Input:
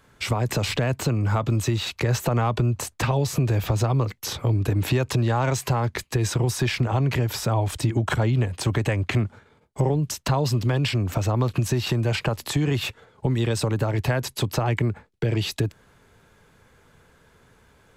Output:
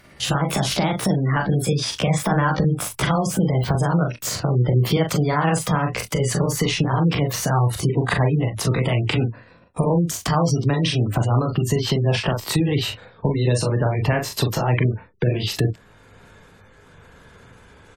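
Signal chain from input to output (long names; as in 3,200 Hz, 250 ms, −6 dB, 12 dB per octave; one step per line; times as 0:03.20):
pitch glide at a constant tempo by +5 semitones ending unshifted
ambience of single reflections 31 ms −11 dB, 41 ms −5 dB, 67 ms −18 dB
gate on every frequency bin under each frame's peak −30 dB strong
in parallel at 0 dB: downward compressor, threshold −35 dBFS, peak gain reduction 17.5 dB
on the sum: level +1.5 dB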